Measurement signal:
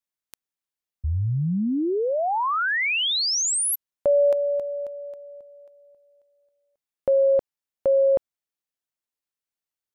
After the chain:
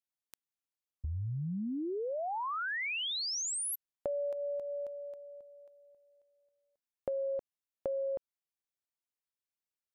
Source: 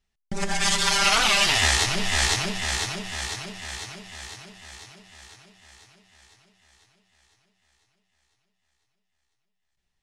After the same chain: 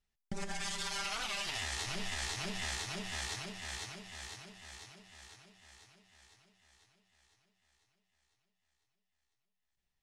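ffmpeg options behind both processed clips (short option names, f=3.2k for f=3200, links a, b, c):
-af "alimiter=limit=-16dB:level=0:latency=1:release=190,acompressor=threshold=-28dB:ratio=3:attack=15:release=367:knee=1:detection=peak,volume=-7.5dB"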